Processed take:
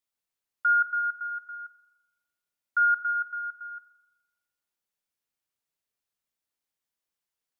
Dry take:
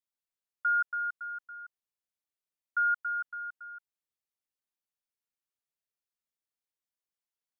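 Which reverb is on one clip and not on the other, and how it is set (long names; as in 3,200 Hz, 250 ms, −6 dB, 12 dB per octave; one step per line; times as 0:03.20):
spring reverb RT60 1.1 s, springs 40 ms, chirp 65 ms, DRR 10 dB
level +4.5 dB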